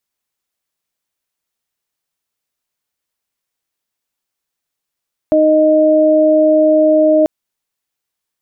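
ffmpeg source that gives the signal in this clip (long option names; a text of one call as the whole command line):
ffmpeg -f lavfi -i "aevalsrc='0.237*sin(2*PI*310*t)+0.376*sin(2*PI*620*t)':duration=1.94:sample_rate=44100" out.wav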